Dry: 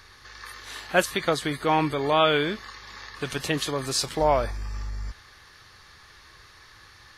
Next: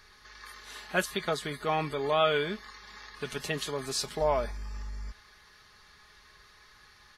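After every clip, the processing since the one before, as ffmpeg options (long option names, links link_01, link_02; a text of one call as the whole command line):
ffmpeg -i in.wav -af "aecho=1:1:4.8:0.52,volume=-7dB" out.wav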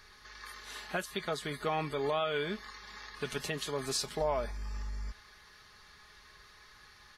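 ffmpeg -i in.wav -af "alimiter=limit=-22dB:level=0:latency=1:release=374" out.wav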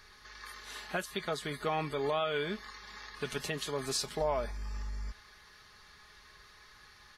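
ffmpeg -i in.wav -af anull out.wav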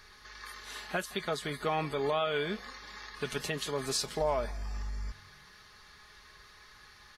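ffmpeg -i in.wav -filter_complex "[0:a]asplit=4[link_01][link_02][link_03][link_04];[link_02]adelay=165,afreqshift=45,volume=-23.5dB[link_05];[link_03]adelay=330,afreqshift=90,volume=-30.4dB[link_06];[link_04]adelay=495,afreqshift=135,volume=-37.4dB[link_07];[link_01][link_05][link_06][link_07]amix=inputs=4:normalize=0,volume=1.5dB" out.wav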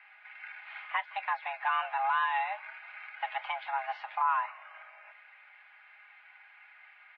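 ffmpeg -i in.wav -af "highpass=frequency=290:width_type=q:width=0.5412,highpass=frequency=290:width_type=q:width=1.307,lowpass=frequency=2400:width_type=q:width=0.5176,lowpass=frequency=2400:width_type=q:width=0.7071,lowpass=frequency=2400:width_type=q:width=1.932,afreqshift=400,volume=2dB" out.wav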